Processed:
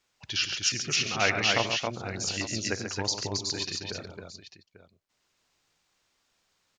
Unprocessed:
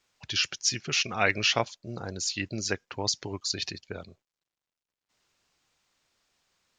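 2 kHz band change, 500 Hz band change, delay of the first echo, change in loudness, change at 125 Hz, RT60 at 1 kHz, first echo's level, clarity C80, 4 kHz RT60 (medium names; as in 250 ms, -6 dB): +0.5 dB, +0.5 dB, 53 ms, +0.5 dB, +1.0 dB, no reverb, -18.5 dB, no reverb, no reverb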